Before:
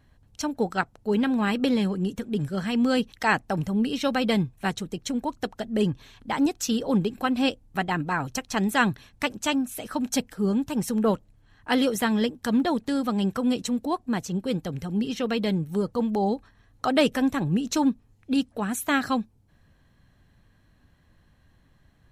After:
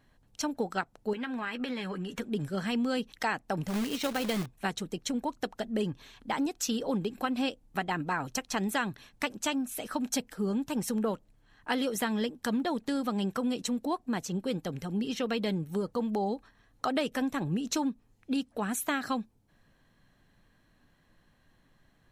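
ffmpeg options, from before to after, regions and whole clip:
ffmpeg -i in.wav -filter_complex "[0:a]asettb=1/sr,asplit=3[link_01][link_02][link_03];[link_01]atrim=end=1.134[link_04];[link_02]atrim=start=1.13:end=2.2,asetpts=PTS-STARTPTS,afade=type=in:duration=0.004:curve=qsin,afade=type=out:start_time=1.066:duration=0.004:curve=qsin,equalizer=frequency=1800:width_type=o:width=1.9:gain=12,acompressor=threshold=-29dB:ratio=12:attack=3.2:release=140:knee=1:detection=peak,asplit=2[link_05][link_06];[link_06]adelay=12,volume=-10.5dB[link_07];[link_05][link_07]amix=inputs=2:normalize=0,atrim=end_sample=47187[link_08];[link_03]atrim=start=2.196[link_09];[link_04][link_08]acrossfade=duration=0.004:curve1=hsin:curve2=qsin[link_10];[link_10][link_09]acrossfade=duration=0.004:curve1=qsin:curve2=hsin,asettb=1/sr,asplit=3[link_11][link_12][link_13];[link_11]atrim=end=3.684[link_14];[link_12]atrim=start=3.68:end=4.46,asetpts=PTS-STARTPTS,afade=type=in:duration=0.004:curve=qsin,afade=type=out:start_time=0.776:duration=0.004:curve=qsin,acrusher=bits=2:mode=log:mix=0:aa=0.000001,tremolo=f=210:d=0.333[link_15];[link_13]atrim=start=4.456[link_16];[link_14][link_15]acrossfade=duration=0.004:curve1=hsin:curve2=qsin[link_17];[link_17][link_16]acrossfade=duration=0.004:curve1=qsin:curve2=hsin,equalizer=frequency=70:width=0.81:gain=-11.5,acompressor=threshold=-25dB:ratio=6,volume=-1.5dB" out.wav

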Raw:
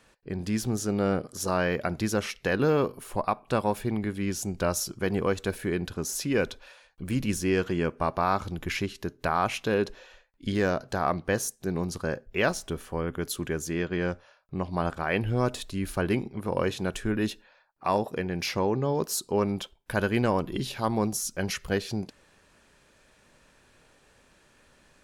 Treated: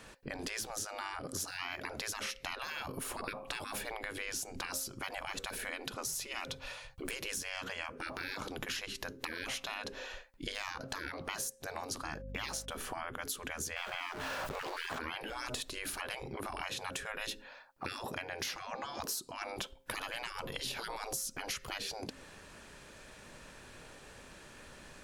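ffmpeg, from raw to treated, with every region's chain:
ffmpeg -i in.wav -filter_complex "[0:a]asettb=1/sr,asplit=3[link_01][link_02][link_03];[link_01]atrim=end=5.694[link_04];[link_02]atrim=start=5.69:end=7.04,asetpts=PTS-STARTPTS,afade=type=in:duration=0.004:curve=qsin,afade=type=out:start_time=1.346:duration=0.004:curve=qsin,lowshelf=frequency=190:width_type=q:width=3:gain=10,bandreject=frequency=1600:width=7.7[link_05];[link_03]atrim=start=7.036[link_06];[link_04][link_05]acrossfade=duration=0.004:curve1=hsin:curve2=qsin[link_07];[link_07][link_06]acrossfade=duration=0.004:curve1=qsin:curve2=hsin,asettb=1/sr,asplit=3[link_08][link_09][link_10];[link_08]atrim=end=12.044[link_11];[link_09]atrim=start=12.04:end=12.72,asetpts=PTS-STARTPTS,afade=type=in:duration=0.004:curve=qsin,afade=type=out:start_time=0.676:duration=0.004:curve=qsin,agate=range=-25dB:threshold=-47dB:ratio=16:release=100:detection=peak,highpass=frequency=330:poles=1,aeval=exprs='val(0)+0.00355*(sin(2*PI*50*n/s)+sin(2*PI*2*50*n/s)/2+sin(2*PI*3*50*n/s)/3+sin(2*PI*4*50*n/s)/4+sin(2*PI*5*50*n/s)/5)':channel_layout=same[link_12];[link_10]atrim=start=12.716[link_13];[link_11][link_12]acrossfade=duration=0.004:curve1=hsin:curve2=qsin[link_14];[link_14][link_13]acrossfade=duration=0.004:curve1=qsin:curve2=hsin,asettb=1/sr,asplit=3[link_15][link_16][link_17];[link_15]atrim=end=13.764[link_18];[link_16]atrim=start=13.76:end=14.99,asetpts=PTS-STARTPTS,afade=type=in:duration=0.004:curve=qsin,afade=type=out:start_time=1.226:duration=0.004:curve=qsin,aeval=exprs='val(0)+0.5*0.00891*sgn(val(0))':channel_layout=same,highshelf=frequency=4600:gain=-9.5,acontrast=65[link_19];[link_17]atrim=start=14.986[link_20];[link_18][link_19]acrossfade=duration=0.004:curve1=hsin:curve2=qsin[link_21];[link_21][link_20]acrossfade=duration=0.004:curve1=qsin:curve2=hsin,bandreject=frequency=266.2:width_type=h:width=4,bandreject=frequency=532.4:width_type=h:width=4,afftfilt=real='re*lt(hypot(re,im),0.0631)':imag='im*lt(hypot(re,im),0.0631)':win_size=1024:overlap=0.75,acompressor=threshold=-44dB:ratio=6,volume=7.5dB" out.wav

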